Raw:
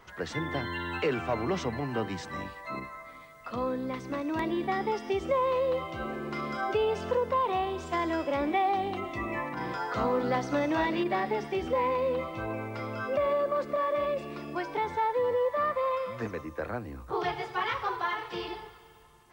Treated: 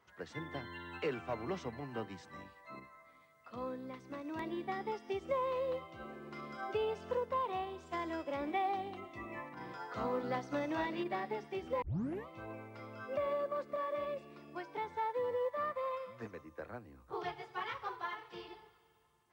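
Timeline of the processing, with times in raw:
11.82 s: tape start 0.45 s
whole clip: high-pass 67 Hz; upward expansion 1.5:1, over -39 dBFS; trim -7 dB

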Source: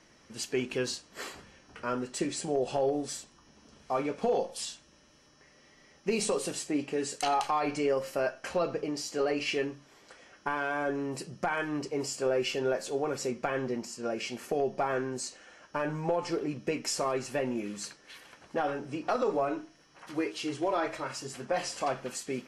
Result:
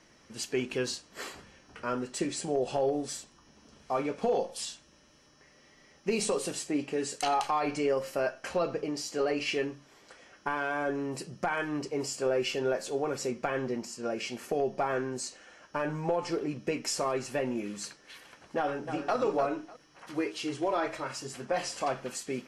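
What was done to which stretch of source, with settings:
18.57–19.16 s: echo throw 300 ms, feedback 20%, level -7.5 dB

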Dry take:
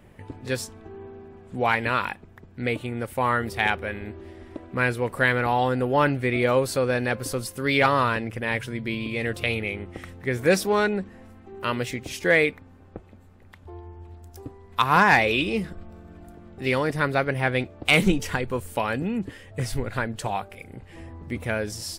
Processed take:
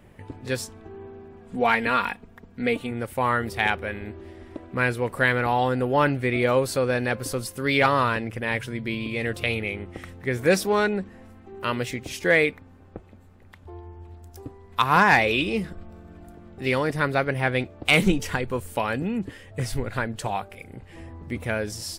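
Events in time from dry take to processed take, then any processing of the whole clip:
1.41–2.91 s: comb 4.3 ms, depth 59%

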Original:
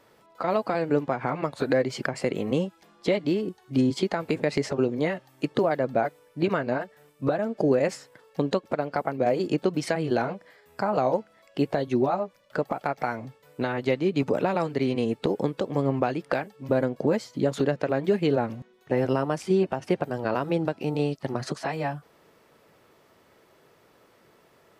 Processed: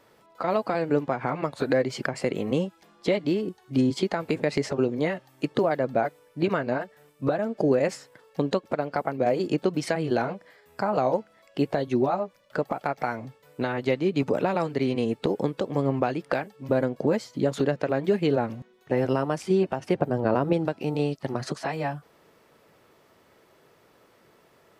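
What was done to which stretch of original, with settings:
19.95–20.53 s: tilt shelf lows +6 dB, about 1.2 kHz

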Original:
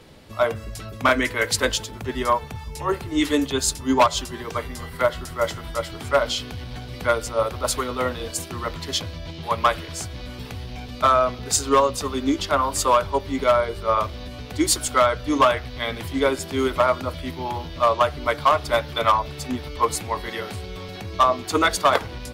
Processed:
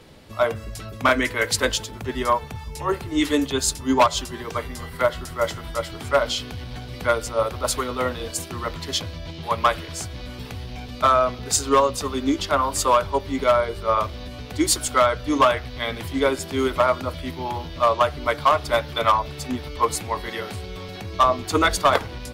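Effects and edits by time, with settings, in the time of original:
21.24–22.02 s: bass shelf 98 Hz +9 dB

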